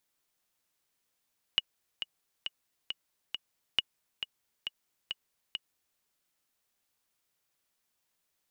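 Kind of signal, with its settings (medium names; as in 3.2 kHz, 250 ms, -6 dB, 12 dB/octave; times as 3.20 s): metronome 136 bpm, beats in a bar 5, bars 2, 2.9 kHz, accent 9.5 dB -11.5 dBFS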